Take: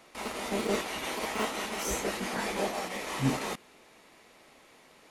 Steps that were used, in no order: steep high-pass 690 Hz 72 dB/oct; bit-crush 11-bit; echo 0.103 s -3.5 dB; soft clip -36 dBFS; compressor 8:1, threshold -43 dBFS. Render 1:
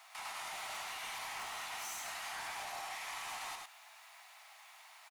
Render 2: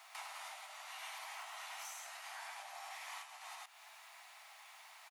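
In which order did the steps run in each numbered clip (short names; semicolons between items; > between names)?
bit-crush > steep high-pass > soft clip > compressor > echo; echo > bit-crush > compressor > soft clip > steep high-pass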